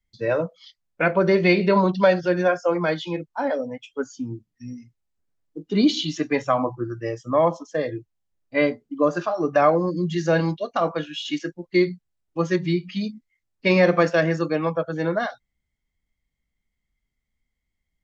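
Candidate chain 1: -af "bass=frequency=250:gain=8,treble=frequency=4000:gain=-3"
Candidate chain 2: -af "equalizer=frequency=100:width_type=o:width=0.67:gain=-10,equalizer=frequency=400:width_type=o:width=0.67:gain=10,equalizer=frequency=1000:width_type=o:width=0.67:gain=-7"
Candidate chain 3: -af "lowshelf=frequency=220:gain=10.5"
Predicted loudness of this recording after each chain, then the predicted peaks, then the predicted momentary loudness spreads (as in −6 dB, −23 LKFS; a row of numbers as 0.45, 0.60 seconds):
−20.5, −19.0, −20.0 LKFS; −4.5, −2.0, −3.5 dBFS; 14, 15, 14 LU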